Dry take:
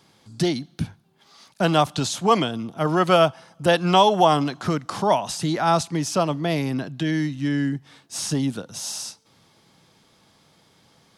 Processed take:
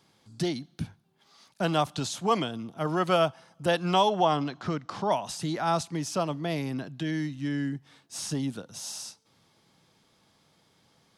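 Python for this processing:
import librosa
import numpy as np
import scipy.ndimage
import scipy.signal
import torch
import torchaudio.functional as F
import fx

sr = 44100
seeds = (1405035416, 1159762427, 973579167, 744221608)

y = fx.lowpass(x, sr, hz=5400.0, slope=12, at=(4.1, 5.11))
y = y * 10.0 ** (-7.0 / 20.0)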